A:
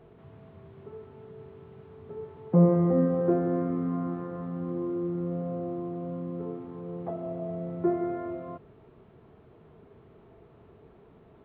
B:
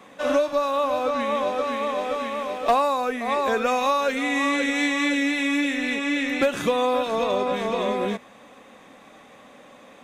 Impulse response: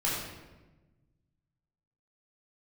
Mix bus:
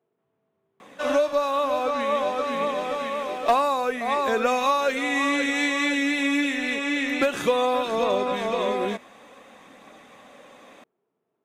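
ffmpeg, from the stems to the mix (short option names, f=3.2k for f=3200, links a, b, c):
-filter_complex "[0:a]highpass=210,volume=-20dB[a];[1:a]aphaser=in_gain=1:out_gain=1:delay=3.2:decay=0.2:speed=0.55:type=triangular,adelay=800,volume=0dB[b];[a][b]amix=inputs=2:normalize=0,lowshelf=f=180:g=-5"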